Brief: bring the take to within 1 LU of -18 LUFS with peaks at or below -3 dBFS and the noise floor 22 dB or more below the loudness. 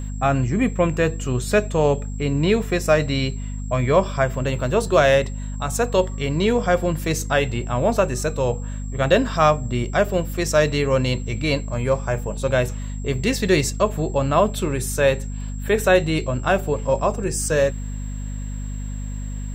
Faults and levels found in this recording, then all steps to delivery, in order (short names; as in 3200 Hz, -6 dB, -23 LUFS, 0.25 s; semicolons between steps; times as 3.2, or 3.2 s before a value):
hum 50 Hz; harmonics up to 250 Hz; hum level -26 dBFS; steady tone 7600 Hz; tone level -44 dBFS; loudness -21.0 LUFS; peak -3.5 dBFS; loudness target -18.0 LUFS
-> de-hum 50 Hz, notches 5; notch 7600 Hz, Q 30; gain +3 dB; limiter -3 dBFS